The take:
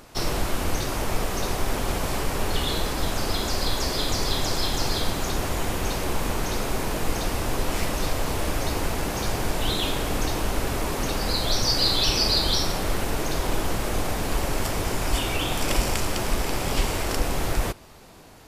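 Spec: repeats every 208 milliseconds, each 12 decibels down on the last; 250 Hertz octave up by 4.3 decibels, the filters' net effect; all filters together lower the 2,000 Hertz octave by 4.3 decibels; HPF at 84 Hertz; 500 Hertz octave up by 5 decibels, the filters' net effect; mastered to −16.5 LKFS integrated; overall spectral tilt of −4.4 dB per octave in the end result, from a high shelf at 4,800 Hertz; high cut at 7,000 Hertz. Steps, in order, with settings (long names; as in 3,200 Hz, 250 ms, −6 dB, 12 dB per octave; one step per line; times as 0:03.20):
high-pass filter 84 Hz
low-pass filter 7,000 Hz
parametric band 250 Hz +4 dB
parametric band 500 Hz +5.5 dB
parametric band 2,000 Hz −4.5 dB
high-shelf EQ 4,800 Hz −8 dB
repeating echo 208 ms, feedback 25%, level −12 dB
level +9.5 dB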